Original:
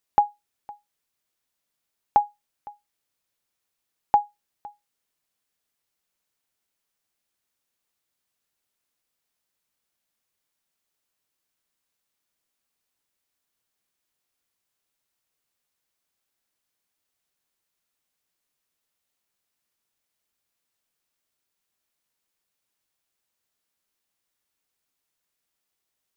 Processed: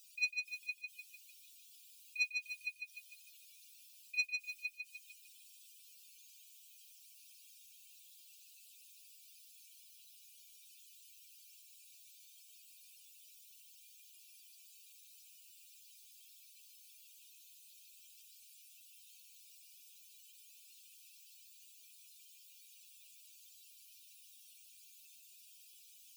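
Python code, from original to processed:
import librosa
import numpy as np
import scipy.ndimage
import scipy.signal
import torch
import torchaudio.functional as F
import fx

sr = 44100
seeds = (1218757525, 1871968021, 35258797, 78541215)

p1 = fx.spec_expand(x, sr, power=3.3)
p2 = fx.over_compress(p1, sr, threshold_db=-28.0, ratio=-1.0)
p3 = 10.0 ** (-29.5 / 20.0) * np.tanh(p2 / 10.0 ** (-29.5 / 20.0))
p4 = fx.brickwall_highpass(p3, sr, low_hz=2300.0)
p5 = p4 + fx.echo_feedback(p4, sr, ms=150, feedback_pct=50, wet_db=-5, dry=0)
y = F.gain(torch.from_numpy(p5), 13.5).numpy()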